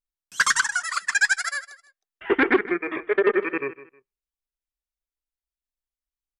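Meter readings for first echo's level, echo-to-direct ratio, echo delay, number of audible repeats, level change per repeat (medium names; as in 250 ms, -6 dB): -16.0 dB, -16.0 dB, 157 ms, 2, -12.0 dB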